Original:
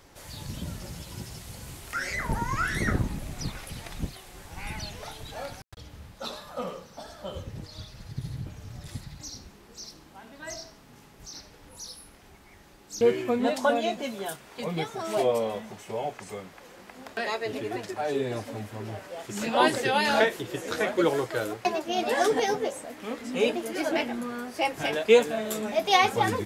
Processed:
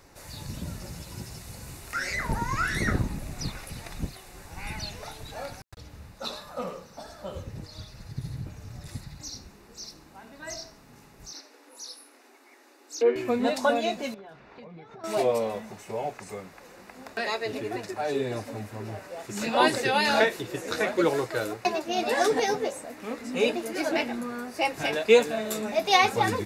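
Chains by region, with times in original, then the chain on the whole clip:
11.33–13.16 Chebyshev high-pass 240 Hz, order 10 + treble ducked by the level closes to 2000 Hz, closed at -22.5 dBFS
14.14–15.04 air absorption 250 m + compressor 10:1, threshold -42 dBFS
whole clip: notch 3200 Hz, Q 6.1; dynamic EQ 3700 Hz, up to +4 dB, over -44 dBFS, Q 1.1

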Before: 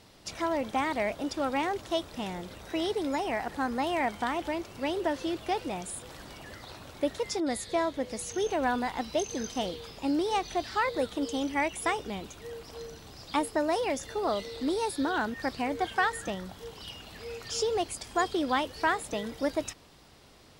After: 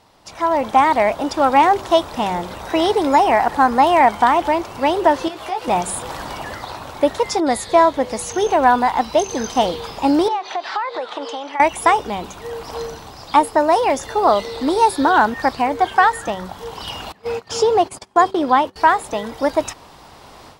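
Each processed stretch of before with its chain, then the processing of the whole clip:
5.28–5.68 low shelf 360 Hz -10 dB + compressor 3:1, threshold -42 dBFS + doubler 16 ms -4.5 dB
10.28–11.6 BPF 590–3900 Hz + compressor 10:1, threshold -38 dBFS
17.12–18.76 HPF 120 Hz + gate -42 dBFS, range -22 dB + tilt -1.5 dB/oct
whole clip: bell 920 Hz +10.5 dB 1.1 oct; de-hum 191.6 Hz, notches 2; AGC gain up to 14 dB; gain -1 dB

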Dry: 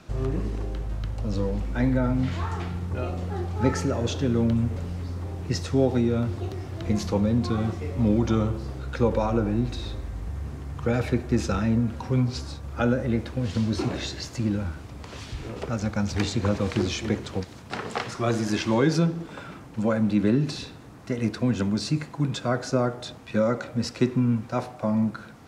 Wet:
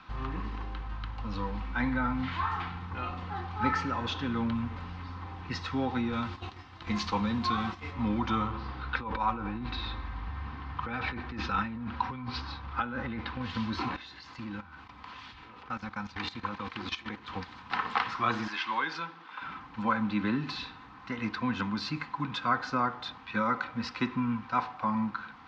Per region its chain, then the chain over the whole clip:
6.12–7.93 gate -32 dBFS, range -9 dB + high shelf 3800 Hz +11 dB + doubler 14 ms -13.5 dB
8.52–13.42 negative-ratio compressor -27 dBFS + LPF 5400 Hz 24 dB/oct
13.96–17.28 HPF 100 Hz 6 dB/oct + level quantiser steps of 15 dB
18.48–19.42 HPF 1200 Hz 6 dB/oct + high shelf 5300 Hz -7.5 dB
whole clip: LPF 4100 Hz 24 dB/oct; resonant low shelf 750 Hz -8.5 dB, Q 3; comb 3.9 ms, depth 39%

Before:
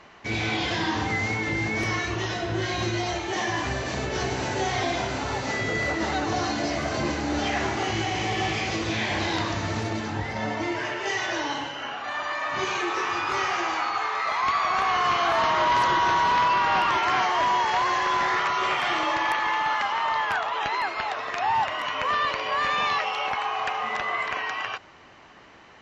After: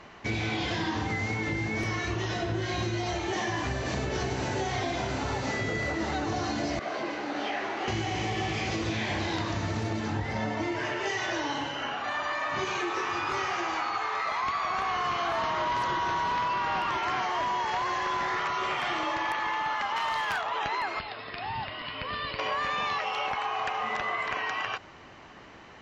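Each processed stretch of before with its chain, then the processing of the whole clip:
6.79–7.88 BPF 380–4000 Hz + detuned doubles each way 59 cents
19.96–20.42 high shelf 2400 Hz +9.5 dB + overloaded stage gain 18 dB
20.99–22.39 brick-wall FIR low-pass 5300 Hz + bell 950 Hz -12.5 dB 2.8 oct
whole clip: low shelf 380 Hz +4.5 dB; compressor, threshold -27 dBFS

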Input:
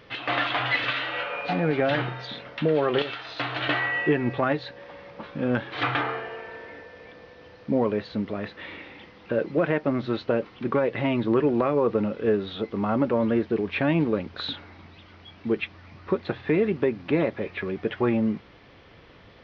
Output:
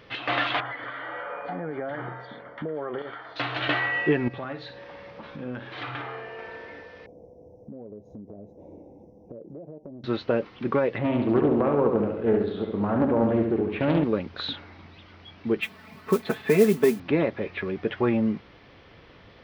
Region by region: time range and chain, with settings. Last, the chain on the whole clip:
0.6–3.36 low shelf 160 Hz -9.5 dB + compressor 5:1, threshold -28 dBFS + polynomial smoothing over 41 samples
4.28–6.39 compressor 2:1, threshold -39 dBFS + flutter echo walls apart 9.5 m, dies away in 0.35 s
7.06–10.04 inverse Chebyshev band-stop 1200–4600 Hz + compressor 8:1, threshold -38 dBFS
10.98–14.04 LPF 1100 Hz 6 dB/oct + flutter echo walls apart 11.9 m, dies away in 0.83 s + Doppler distortion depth 0.34 ms
15.61–17 HPF 100 Hz + comb 4.6 ms, depth 92% + modulation noise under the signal 21 dB
whole clip: dry

